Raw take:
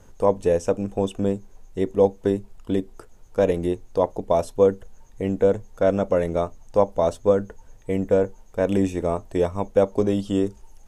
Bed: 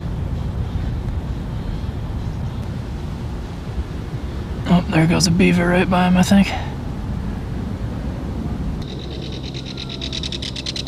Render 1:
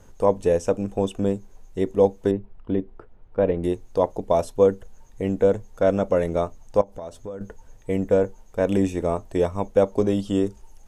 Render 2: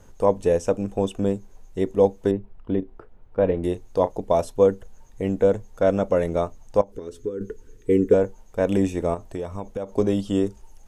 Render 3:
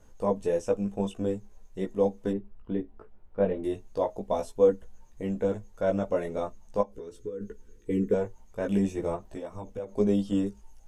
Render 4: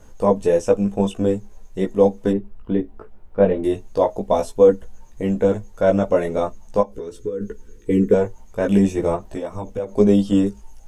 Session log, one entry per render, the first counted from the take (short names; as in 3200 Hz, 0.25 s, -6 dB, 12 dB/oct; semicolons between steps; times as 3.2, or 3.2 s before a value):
2.31–3.64 air absorption 450 m; 6.81–7.41 compressor 4:1, threshold -34 dBFS
2.79–4.09 doubler 32 ms -13 dB; 6.92–8.14 EQ curve 180 Hz 0 dB, 430 Hz +13 dB, 640 Hz -20 dB, 1400 Hz -1 dB; 9.14–9.89 compressor, threshold -26 dBFS
chorus voices 4, 0.4 Hz, delay 17 ms, depth 3.1 ms; resonator 210 Hz, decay 0.2 s, harmonics odd, mix 40%
gain +10 dB; limiter -3 dBFS, peak gain reduction 3 dB